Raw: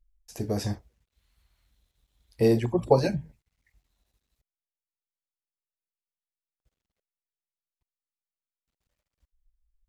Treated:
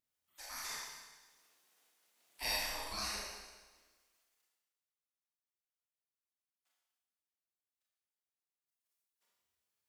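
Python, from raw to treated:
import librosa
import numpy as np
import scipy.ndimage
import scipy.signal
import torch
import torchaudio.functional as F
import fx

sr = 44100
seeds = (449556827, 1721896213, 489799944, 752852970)

y = fx.spec_gate(x, sr, threshold_db=-30, keep='weak')
y = fx.rev_schroeder(y, sr, rt60_s=1.3, comb_ms=26, drr_db=-5.5)
y = y * 10.0 ** (1.5 / 20.0)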